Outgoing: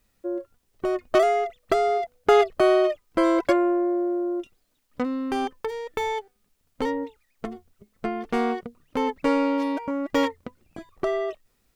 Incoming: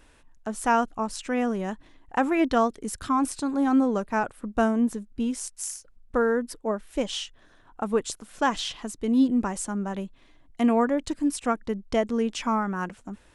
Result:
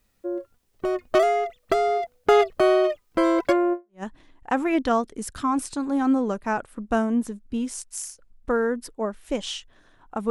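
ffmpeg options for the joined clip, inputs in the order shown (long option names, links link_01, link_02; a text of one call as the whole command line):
ffmpeg -i cue0.wav -i cue1.wav -filter_complex "[0:a]apad=whole_dur=10.3,atrim=end=10.3,atrim=end=4.03,asetpts=PTS-STARTPTS[link_01];[1:a]atrim=start=1.39:end=7.96,asetpts=PTS-STARTPTS[link_02];[link_01][link_02]acrossfade=duration=0.3:curve1=exp:curve2=exp" out.wav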